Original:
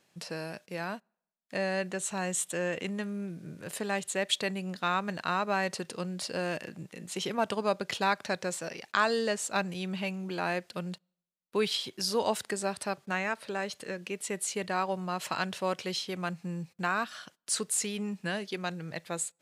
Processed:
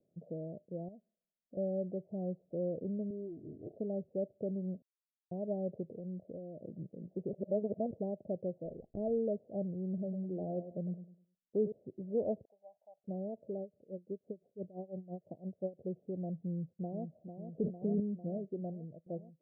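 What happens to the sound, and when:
0.88–1.57 compressor 5:1, threshold -43 dBFS
3.1–3.76 comb 2.8 ms, depth 85%
4.82–5.31 mute
5.94–6.59 compressor, threshold -36 dBFS
7.33–7.91 reverse
8.65–9.18 running maximum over 3 samples
9.87–11.72 feedback echo 0.102 s, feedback 34%, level -11 dB
12.45–13.04 elliptic band-pass 870–9900 Hz
13.61–15.81 dB-linear tremolo 5.9 Hz, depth 19 dB
16.47–17.07 echo throw 0.45 s, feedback 75%, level -8 dB
17.58–18 fast leveller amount 100%
18.66–19.06 fade out, to -19 dB
whole clip: steep low-pass 660 Hz 72 dB/oct; dynamic EQ 120 Hz, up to +3 dB, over -52 dBFS, Q 0.79; gain -3.5 dB

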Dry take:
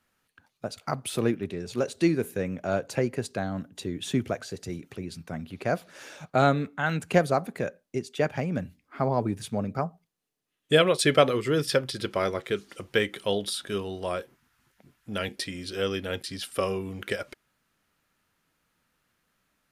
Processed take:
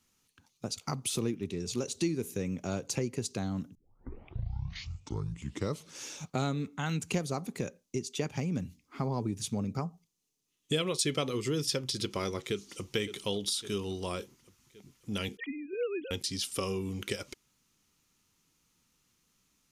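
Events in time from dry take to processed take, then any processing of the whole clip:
3.75 tape start 2.29 s
12.44–12.91 echo throw 0.56 s, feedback 55%, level -11.5 dB
15.37–16.11 sine-wave speech
whole clip: fifteen-band EQ 630 Hz -11 dB, 1600 Hz -11 dB, 6300 Hz +9 dB; compressor 2.5:1, threshold -32 dBFS; gain +1.5 dB

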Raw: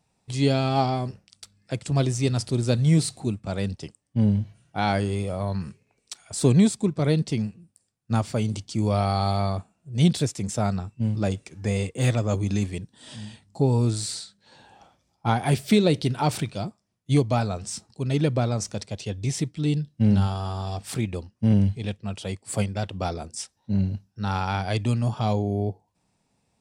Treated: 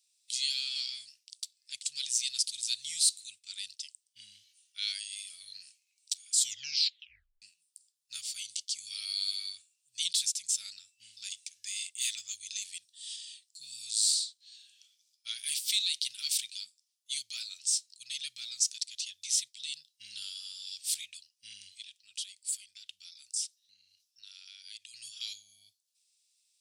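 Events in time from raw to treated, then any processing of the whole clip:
6.34 tape stop 1.08 s
21.82–24.94 compressor 12:1, threshold -33 dBFS
whole clip: inverse Chebyshev high-pass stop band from 1000 Hz, stop band 60 dB; gain +5.5 dB

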